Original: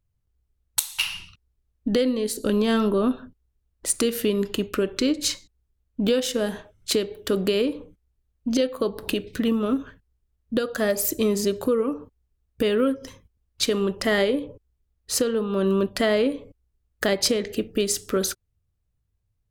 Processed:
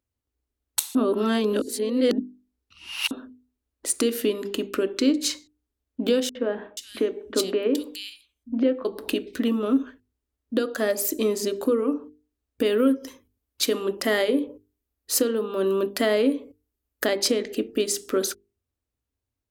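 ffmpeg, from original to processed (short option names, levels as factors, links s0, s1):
-filter_complex "[0:a]asettb=1/sr,asplit=3[s0][s1][s2];[s0]atrim=end=6.294[s3];[s1]atrim=start=6.29:end=8.85,asetpts=PTS-STARTPTS,afade=t=in:d=0.004:c=qsin,afade=t=out:st=2.556:d=0.004:c=qsin,acrossover=split=150|2600[s4][s5][s6];[s5]adelay=60[s7];[s6]adelay=480[s8];[s4][s7][s8]amix=inputs=3:normalize=0,atrim=end_sample=112896[s9];[s2]atrim=start=8.846[s10];[s3][s9]acrossfade=d=0.004:c1=hsin:c2=qsin[s11];[s11][s10]acrossfade=d=0.004:c1=qsin:c2=hsin,asettb=1/sr,asplit=3[s12][s13][s14];[s12]atrim=end=12.654[s15];[s13]atrim=start=12.65:end=17.05,asetpts=PTS-STARTPTS,afade=t=in:d=0.004:c=qsin,afade=t=out:st=4.396:d=0.004:c=qsin,equalizer=f=14000:t=o:w=0.65:g=10.5[s16];[s14]atrim=start=17.046[s17];[s15][s16]acrossfade=d=0.004:c1=hsin:c2=qsin[s18];[s18][s17]acrossfade=d=0.004:c1=qsin:c2=hsin,asplit=3[s19][s20][s21];[s19]atrim=end=0.952[s22];[s20]atrim=start=0.948:end=3.112,asetpts=PTS-STARTPTS,areverse[s23];[s21]atrim=start=3.108[s24];[s22][s23]acrossfade=d=0.004:c1=hsin:c2=hsin[s25];[s25][s24]acrossfade=d=0.004:c1=hsin:c2=hsin,highpass=43,lowshelf=f=210:t=q:w=3:g=-7,bandreject=f=50:t=h:w=6,bandreject=f=100:t=h:w=6,bandreject=f=150:t=h:w=6,bandreject=f=200:t=h:w=6,bandreject=f=250:t=h:w=6,bandreject=f=300:t=h:w=6,bandreject=f=350:t=h:w=6,bandreject=f=400:t=h:w=6,bandreject=f=450:t=h:w=6,volume=0.841"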